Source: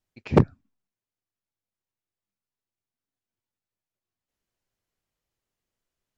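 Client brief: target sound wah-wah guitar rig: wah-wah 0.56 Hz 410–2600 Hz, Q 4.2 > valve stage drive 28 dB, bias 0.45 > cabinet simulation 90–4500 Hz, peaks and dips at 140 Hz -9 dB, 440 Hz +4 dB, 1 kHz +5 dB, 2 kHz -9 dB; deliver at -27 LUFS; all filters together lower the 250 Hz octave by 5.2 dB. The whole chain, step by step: peaking EQ 250 Hz -6.5 dB; wah-wah 0.56 Hz 410–2600 Hz, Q 4.2; valve stage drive 28 dB, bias 0.45; cabinet simulation 90–4500 Hz, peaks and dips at 140 Hz -9 dB, 440 Hz +4 dB, 1 kHz +5 dB, 2 kHz -9 dB; trim +22 dB

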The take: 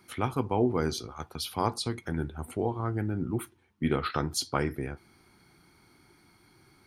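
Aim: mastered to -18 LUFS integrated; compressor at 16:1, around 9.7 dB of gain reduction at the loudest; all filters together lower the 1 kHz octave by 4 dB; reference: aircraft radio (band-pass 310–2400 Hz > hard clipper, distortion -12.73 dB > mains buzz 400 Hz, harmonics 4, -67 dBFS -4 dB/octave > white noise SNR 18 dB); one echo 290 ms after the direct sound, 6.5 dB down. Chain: peaking EQ 1 kHz -5 dB; compression 16:1, threshold -30 dBFS; band-pass 310–2400 Hz; delay 290 ms -6.5 dB; hard clipper -32 dBFS; mains buzz 400 Hz, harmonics 4, -67 dBFS -4 dB/octave; white noise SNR 18 dB; trim +24 dB

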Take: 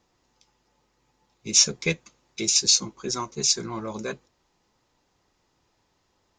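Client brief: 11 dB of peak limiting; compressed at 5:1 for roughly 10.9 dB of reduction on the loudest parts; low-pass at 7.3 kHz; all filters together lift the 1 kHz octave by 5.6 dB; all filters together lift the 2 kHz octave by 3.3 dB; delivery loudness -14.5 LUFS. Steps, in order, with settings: low-pass 7.3 kHz; peaking EQ 1 kHz +5.5 dB; peaking EQ 2 kHz +3 dB; compression 5:1, threshold -27 dBFS; trim +20.5 dB; peak limiter -3 dBFS

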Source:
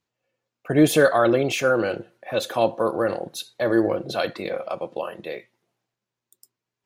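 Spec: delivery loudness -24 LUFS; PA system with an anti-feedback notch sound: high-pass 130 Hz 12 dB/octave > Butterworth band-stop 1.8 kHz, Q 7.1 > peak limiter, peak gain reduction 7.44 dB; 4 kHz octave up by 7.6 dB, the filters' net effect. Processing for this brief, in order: high-pass 130 Hz 12 dB/octave; Butterworth band-stop 1.8 kHz, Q 7.1; peaking EQ 4 kHz +9 dB; trim +0.5 dB; peak limiter -11.5 dBFS

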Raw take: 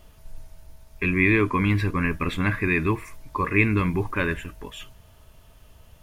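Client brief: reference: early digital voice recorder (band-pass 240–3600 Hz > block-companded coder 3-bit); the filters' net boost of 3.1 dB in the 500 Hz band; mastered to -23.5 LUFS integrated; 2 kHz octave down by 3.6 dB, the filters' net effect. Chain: band-pass 240–3600 Hz; peaking EQ 500 Hz +5 dB; peaking EQ 2 kHz -4 dB; block-companded coder 3-bit; trim +1.5 dB

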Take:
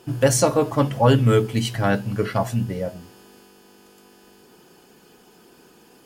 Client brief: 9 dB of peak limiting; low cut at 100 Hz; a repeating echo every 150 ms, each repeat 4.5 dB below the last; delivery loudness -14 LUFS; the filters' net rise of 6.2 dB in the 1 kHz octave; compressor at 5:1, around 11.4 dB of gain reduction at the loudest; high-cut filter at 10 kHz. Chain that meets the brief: high-pass 100 Hz; low-pass 10 kHz; peaking EQ 1 kHz +8 dB; compression 5:1, threshold -22 dBFS; peak limiter -19.5 dBFS; feedback delay 150 ms, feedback 60%, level -4.5 dB; trim +14 dB

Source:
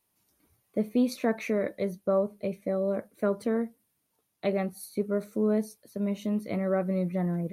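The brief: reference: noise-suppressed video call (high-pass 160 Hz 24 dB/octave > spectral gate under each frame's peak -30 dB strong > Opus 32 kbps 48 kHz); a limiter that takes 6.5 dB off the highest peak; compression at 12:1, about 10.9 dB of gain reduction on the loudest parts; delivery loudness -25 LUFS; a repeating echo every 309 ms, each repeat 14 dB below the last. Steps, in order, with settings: compression 12:1, threshold -31 dBFS; peak limiter -28 dBFS; high-pass 160 Hz 24 dB/octave; feedback delay 309 ms, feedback 20%, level -14 dB; spectral gate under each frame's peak -30 dB strong; trim +14 dB; Opus 32 kbps 48 kHz

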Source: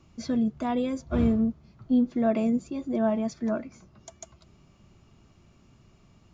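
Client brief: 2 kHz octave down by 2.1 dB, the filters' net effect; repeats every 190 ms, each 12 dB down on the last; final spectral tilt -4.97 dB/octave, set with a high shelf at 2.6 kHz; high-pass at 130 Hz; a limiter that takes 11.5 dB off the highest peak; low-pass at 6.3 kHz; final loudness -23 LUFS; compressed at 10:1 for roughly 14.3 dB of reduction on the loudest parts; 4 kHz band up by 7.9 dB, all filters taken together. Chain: high-pass 130 Hz; low-pass 6.3 kHz; peaking EQ 2 kHz -8 dB; treble shelf 2.6 kHz +8 dB; peaking EQ 4 kHz +6 dB; compression 10:1, threshold -34 dBFS; peak limiter -33 dBFS; feedback delay 190 ms, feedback 25%, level -12 dB; trim +18.5 dB

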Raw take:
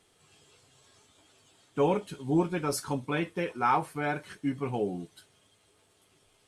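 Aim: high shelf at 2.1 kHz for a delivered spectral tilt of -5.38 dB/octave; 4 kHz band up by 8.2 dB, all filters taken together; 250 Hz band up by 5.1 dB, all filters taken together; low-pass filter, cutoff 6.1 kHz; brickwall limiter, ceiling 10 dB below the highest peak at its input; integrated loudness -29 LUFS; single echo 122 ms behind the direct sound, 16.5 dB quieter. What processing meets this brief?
low-pass 6.1 kHz; peaking EQ 250 Hz +7 dB; treble shelf 2.1 kHz +3.5 dB; peaking EQ 4 kHz +8.5 dB; peak limiter -21 dBFS; delay 122 ms -16.5 dB; trim +3 dB

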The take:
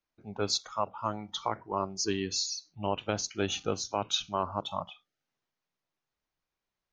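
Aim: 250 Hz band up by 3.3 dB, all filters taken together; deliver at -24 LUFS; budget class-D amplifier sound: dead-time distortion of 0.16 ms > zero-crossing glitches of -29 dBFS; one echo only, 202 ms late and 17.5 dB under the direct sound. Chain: peaking EQ 250 Hz +4.5 dB; delay 202 ms -17.5 dB; dead-time distortion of 0.16 ms; zero-crossing glitches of -29 dBFS; trim +10.5 dB

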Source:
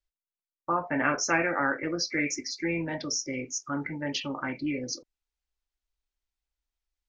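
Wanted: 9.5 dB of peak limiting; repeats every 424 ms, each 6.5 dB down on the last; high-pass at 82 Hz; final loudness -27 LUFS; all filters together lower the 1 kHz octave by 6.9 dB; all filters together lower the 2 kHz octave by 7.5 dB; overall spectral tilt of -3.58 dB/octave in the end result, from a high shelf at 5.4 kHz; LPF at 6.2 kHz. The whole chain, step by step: high-pass 82 Hz; low-pass 6.2 kHz; peaking EQ 1 kHz -7 dB; peaking EQ 2 kHz -8 dB; treble shelf 5.4 kHz +7 dB; peak limiter -26 dBFS; feedback delay 424 ms, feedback 47%, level -6.5 dB; trim +7.5 dB

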